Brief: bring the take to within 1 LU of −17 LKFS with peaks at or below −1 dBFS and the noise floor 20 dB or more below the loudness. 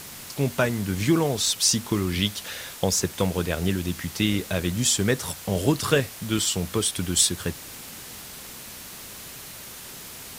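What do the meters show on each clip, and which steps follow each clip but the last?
number of dropouts 3; longest dropout 1.5 ms; background noise floor −41 dBFS; target noise floor −44 dBFS; integrated loudness −24.0 LKFS; sample peak −6.0 dBFS; target loudness −17.0 LKFS
→ repair the gap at 0:02.99/0:04.54/0:06.45, 1.5 ms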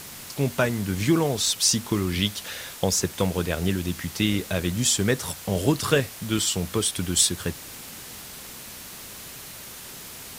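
number of dropouts 0; background noise floor −41 dBFS; target noise floor −44 dBFS
→ broadband denoise 6 dB, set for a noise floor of −41 dBFS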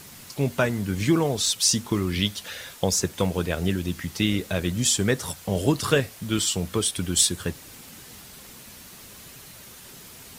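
background noise floor −45 dBFS; integrated loudness −24.0 LKFS; sample peak −6.5 dBFS; target loudness −17.0 LKFS
→ level +7 dB
brickwall limiter −1 dBFS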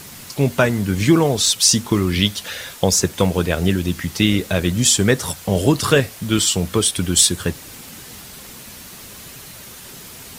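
integrated loudness −17.5 LKFS; sample peak −1.0 dBFS; background noise floor −38 dBFS

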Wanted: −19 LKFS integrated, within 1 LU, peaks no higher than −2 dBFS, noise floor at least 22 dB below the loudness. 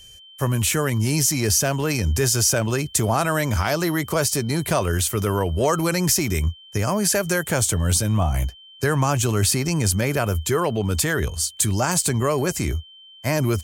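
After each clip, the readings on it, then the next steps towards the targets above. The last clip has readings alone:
interfering tone 3,100 Hz; level of the tone −44 dBFS; integrated loudness −21.5 LKFS; sample peak −5.5 dBFS; target loudness −19.0 LKFS
→ notch filter 3,100 Hz, Q 30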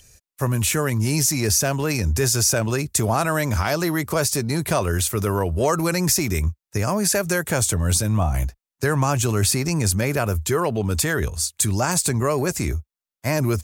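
interfering tone none found; integrated loudness −21.5 LKFS; sample peak −5.5 dBFS; target loudness −19.0 LKFS
→ level +2.5 dB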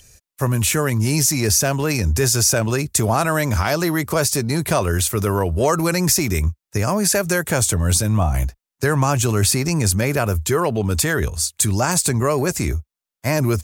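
integrated loudness −19.0 LKFS; sample peak −3.0 dBFS; background noise floor −88 dBFS

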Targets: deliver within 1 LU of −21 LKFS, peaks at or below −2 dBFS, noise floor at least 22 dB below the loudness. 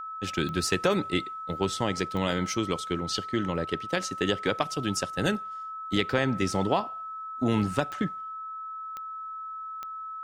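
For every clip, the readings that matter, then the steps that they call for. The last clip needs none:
number of clicks 5; interfering tone 1,300 Hz; level of the tone −35 dBFS; integrated loudness −29.5 LKFS; sample peak −9.0 dBFS; target loudness −21.0 LKFS
→ click removal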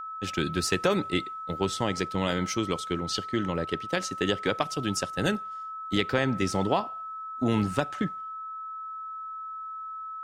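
number of clicks 0; interfering tone 1,300 Hz; level of the tone −35 dBFS
→ notch filter 1,300 Hz, Q 30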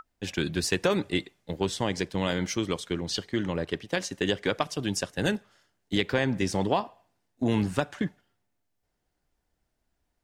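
interfering tone none found; integrated loudness −29.0 LKFS; sample peak −9.0 dBFS; target loudness −21.0 LKFS
→ level +8 dB
brickwall limiter −2 dBFS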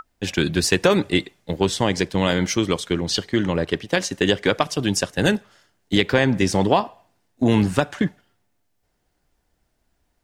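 integrated loudness −21.0 LKFS; sample peak −2.0 dBFS; background noise floor −71 dBFS

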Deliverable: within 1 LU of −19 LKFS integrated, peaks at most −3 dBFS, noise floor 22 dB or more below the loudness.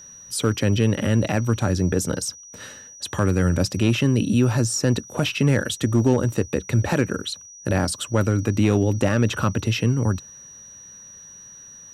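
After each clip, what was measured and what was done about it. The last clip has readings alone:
share of clipped samples 0.6%; peaks flattened at −10.0 dBFS; interfering tone 5,800 Hz; level of the tone −41 dBFS; integrated loudness −22.0 LKFS; sample peak −10.0 dBFS; target loudness −19.0 LKFS
→ clipped peaks rebuilt −10 dBFS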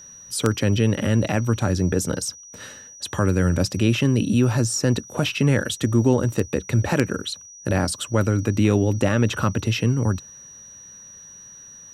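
share of clipped samples 0.0%; interfering tone 5,800 Hz; level of the tone −41 dBFS
→ notch filter 5,800 Hz, Q 30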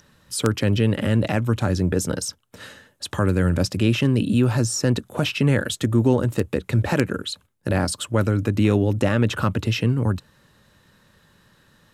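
interfering tone none found; integrated loudness −22.0 LKFS; sample peak −1.0 dBFS; target loudness −19.0 LKFS
→ level +3 dB
brickwall limiter −3 dBFS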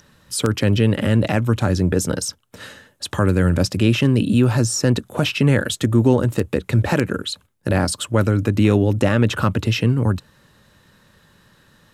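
integrated loudness −19.0 LKFS; sample peak −3.0 dBFS; background noise floor −57 dBFS

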